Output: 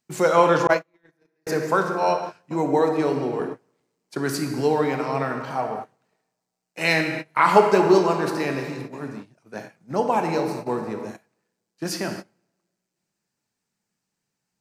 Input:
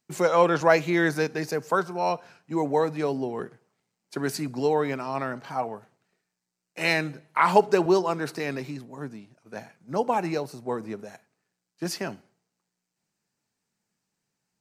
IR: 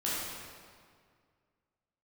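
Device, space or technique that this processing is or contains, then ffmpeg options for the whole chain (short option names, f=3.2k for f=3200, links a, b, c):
keyed gated reverb: -filter_complex "[0:a]asplit=3[a][b][c];[1:a]atrim=start_sample=2205[d];[b][d]afir=irnorm=-1:irlink=0[e];[c]apad=whole_len=644128[f];[e][f]sidechaingate=range=-33dB:threshold=-42dB:ratio=16:detection=peak,volume=-7.5dB[g];[a][g]amix=inputs=2:normalize=0,asettb=1/sr,asplit=3[h][i][j];[h]atrim=end=0.674[k];[i]atrim=start=0.67:end=1.47,asetpts=PTS-STARTPTS,afade=t=in:d=0.004:c=qsin,afade=t=out:st=0.796:d=0.004:c=qsin,agate=range=-50dB:threshold=-12dB:ratio=16:detection=peak[l];[j]atrim=start=1.466[m];[k][l]acrossfade=d=0.004:c1=hsin:c2=qsin[n];[n][m]acrossfade=d=0.004:c1=qsin:c2=hsin"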